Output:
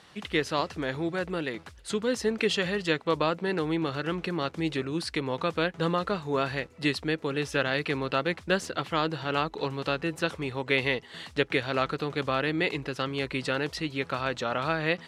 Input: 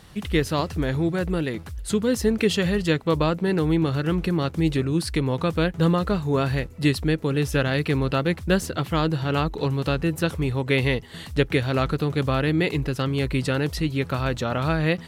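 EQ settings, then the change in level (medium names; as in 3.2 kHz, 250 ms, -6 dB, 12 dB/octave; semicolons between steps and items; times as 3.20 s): high-pass 580 Hz 6 dB/octave; distance through air 64 m; 0.0 dB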